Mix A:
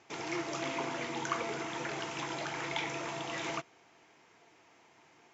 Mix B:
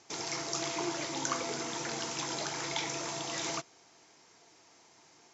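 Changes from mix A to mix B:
speech: entry +0.50 s
background: add high shelf with overshoot 3,600 Hz +8.5 dB, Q 1.5

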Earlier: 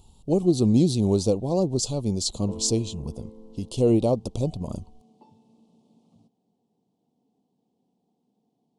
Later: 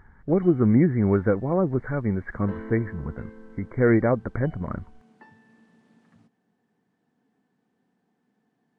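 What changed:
speech: add linear-phase brick-wall low-pass 2,300 Hz
master: remove Chebyshev band-stop filter 790–3,500 Hz, order 2

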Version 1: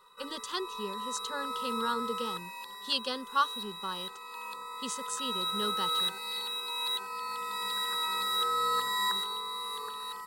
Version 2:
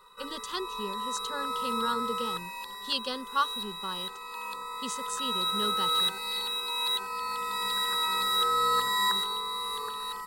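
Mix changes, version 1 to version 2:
background +3.5 dB
master: add low-shelf EQ 96 Hz +10 dB

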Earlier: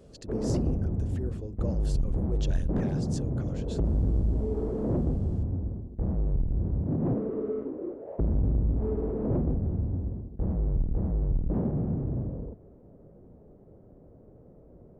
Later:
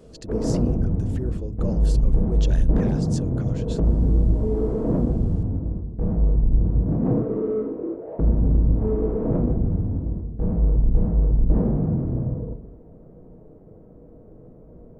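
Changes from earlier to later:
speech +5.0 dB
reverb: on, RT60 0.50 s

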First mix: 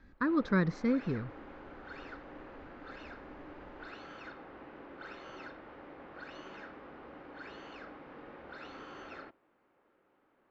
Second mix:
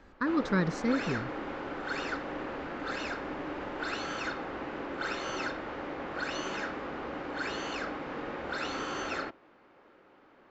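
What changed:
background +11.5 dB
master: remove high-frequency loss of the air 170 metres

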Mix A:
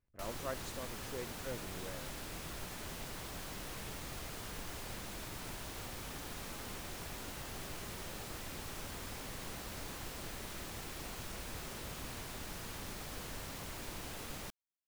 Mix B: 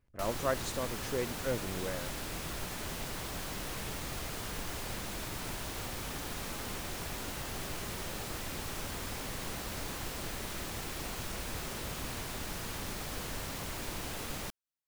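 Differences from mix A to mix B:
speech +9.5 dB
background +5.5 dB

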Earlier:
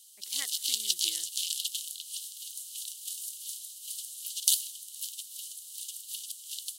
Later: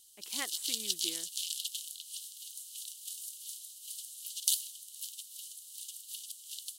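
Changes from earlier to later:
speech: remove transistor ladder low-pass 2,400 Hz, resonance 55%
background −4.5 dB

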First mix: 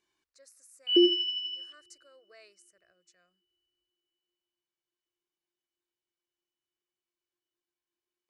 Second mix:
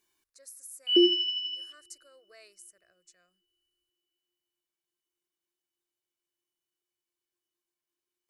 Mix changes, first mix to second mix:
speech: remove high-pass filter 44 Hz
master: remove high-frequency loss of the air 79 metres

